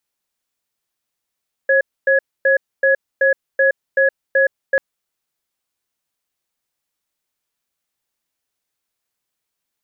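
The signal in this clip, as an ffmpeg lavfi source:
-f lavfi -i "aevalsrc='0.211*(sin(2*PI*540*t)+sin(2*PI*1680*t))*clip(min(mod(t,0.38),0.12-mod(t,0.38))/0.005,0,1)':d=3.09:s=44100"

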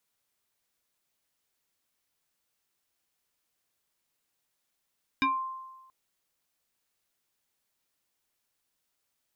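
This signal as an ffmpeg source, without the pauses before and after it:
-f lavfi -i "aevalsrc='0.0891*pow(10,-3*t/1.19)*sin(2*PI*1050*t+2*pow(10,-3*t/0.24)*sin(2*PI*1.26*1050*t))':d=0.68:s=44100"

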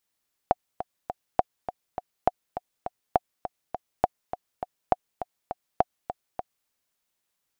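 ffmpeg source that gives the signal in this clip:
-f lavfi -i "aevalsrc='pow(10,(-5.5-11.5*gte(mod(t,3*60/204),60/204))/20)*sin(2*PI*729*mod(t,60/204))*exp(-6.91*mod(t,60/204)/0.03)':d=6.17:s=44100"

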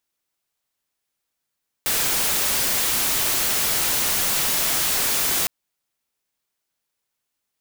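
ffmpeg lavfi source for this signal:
-f lavfi -i "anoisesrc=c=white:a=0.146:d=3.61:r=44100:seed=1"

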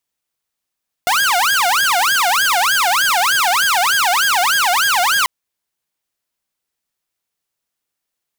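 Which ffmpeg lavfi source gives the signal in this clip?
-f lavfi -i "aevalsrc='0.316*(2*mod((1168.5*t-471.5/(2*PI*3.3)*sin(2*PI*3.3*t)),1)-1)':d=4.19:s=44100"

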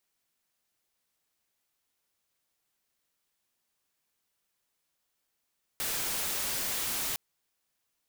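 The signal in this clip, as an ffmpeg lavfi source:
-f lavfi -i "anoisesrc=c=white:a=0.0411:d=1.36:r=44100:seed=1"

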